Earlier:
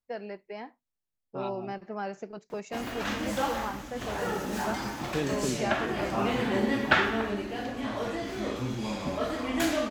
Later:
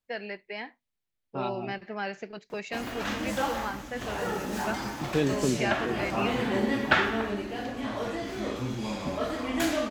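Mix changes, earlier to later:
first voice: add flat-topped bell 2,700 Hz +10.5 dB
second voice +5.0 dB

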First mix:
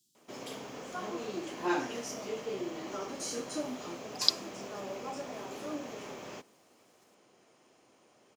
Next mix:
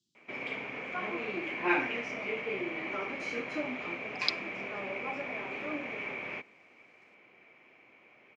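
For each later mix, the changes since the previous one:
speech: add high-frequency loss of the air 140 metres
background: add low-pass with resonance 2,300 Hz, resonance Q 10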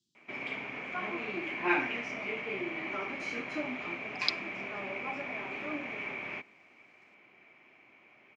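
background: add parametric band 490 Hz −7 dB 0.31 octaves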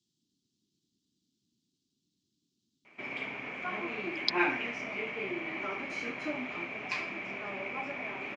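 background: entry +2.70 s

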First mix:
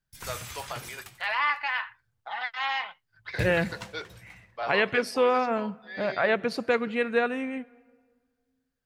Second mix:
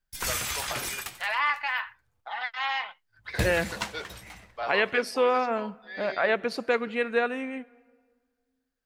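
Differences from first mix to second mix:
background +10.0 dB
master: add parametric band 120 Hz −12 dB 1.1 octaves

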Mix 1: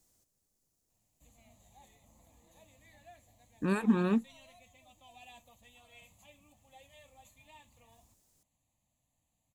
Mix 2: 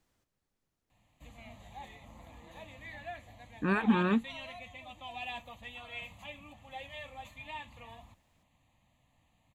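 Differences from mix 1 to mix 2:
background +11.5 dB
master: add drawn EQ curve 640 Hz 0 dB, 1,500 Hz +7 dB, 3,300 Hz +2 dB, 6,900 Hz −13 dB

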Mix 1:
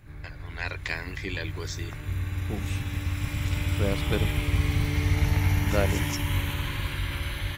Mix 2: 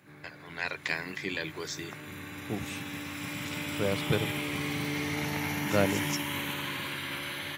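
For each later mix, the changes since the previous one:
background: add high-pass filter 170 Hz 24 dB per octave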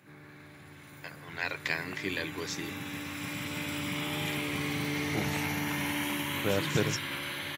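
first voice: entry +0.80 s
second voice: entry +2.65 s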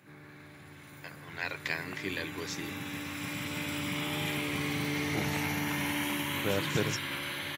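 reverb: off

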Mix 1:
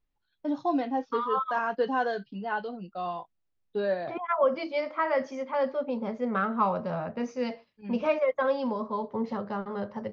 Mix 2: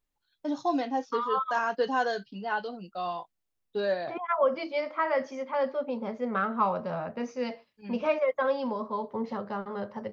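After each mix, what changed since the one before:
first voice: remove high-frequency loss of the air 200 metres
master: add low-shelf EQ 230 Hz −5 dB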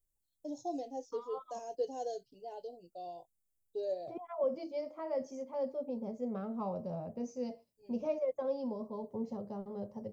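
first voice: add phaser with its sweep stopped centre 500 Hz, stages 4
master: add drawn EQ curve 120 Hz 0 dB, 190 Hz −4 dB, 700 Hz −8 dB, 1,500 Hz −28 dB, 2,300 Hz −22 dB, 3,800 Hz −18 dB, 7,800 Hz +5 dB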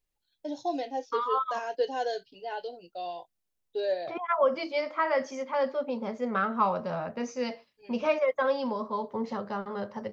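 second voice: remove high-frequency loss of the air 120 metres
master: remove drawn EQ curve 120 Hz 0 dB, 190 Hz −4 dB, 700 Hz −8 dB, 1,500 Hz −28 dB, 2,300 Hz −22 dB, 3,800 Hz −18 dB, 7,800 Hz +5 dB

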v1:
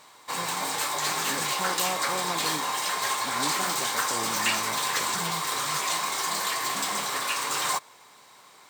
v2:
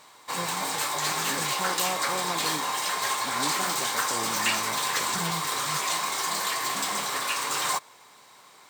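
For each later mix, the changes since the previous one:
first voice +4.0 dB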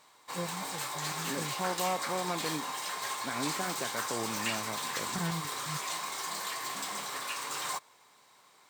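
background −8.5 dB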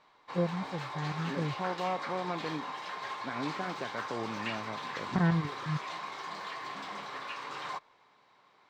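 first voice +8.5 dB
master: add high-frequency loss of the air 240 metres

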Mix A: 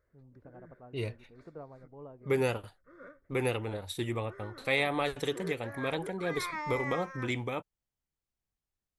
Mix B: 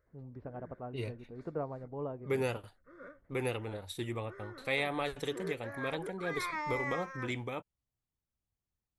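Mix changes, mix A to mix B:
first voice +9.0 dB
second voice −4.0 dB

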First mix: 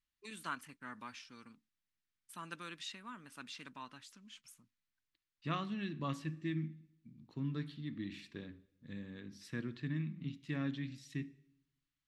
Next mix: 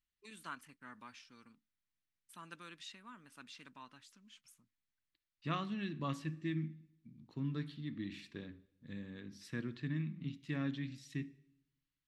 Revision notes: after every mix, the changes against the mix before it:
first voice −5.0 dB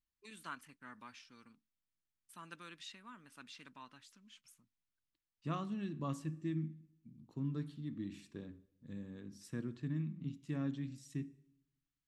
second voice: add graphic EQ with 10 bands 2,000 Hz −9 dB, 4,000 Hz −8 dB, 8,000 Hz +6 dB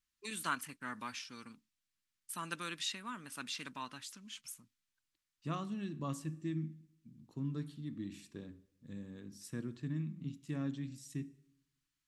first voice +9.5 dB
master: add high-shelf EQ 6,100 Hz +9.5 dB

